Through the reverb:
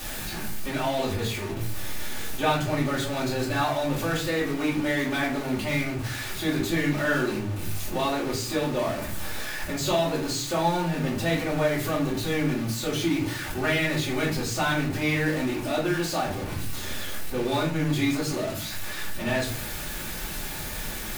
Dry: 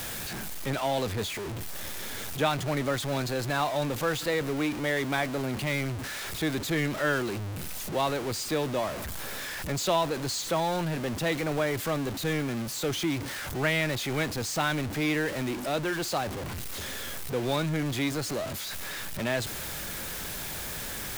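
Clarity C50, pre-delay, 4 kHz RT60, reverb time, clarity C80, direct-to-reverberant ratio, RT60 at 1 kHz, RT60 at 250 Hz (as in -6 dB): 6.5 dB, 3 ms, 0.30 s, 0.50 s, 11.5 dB, -7.5 dB, 0.40 s, 0.80 s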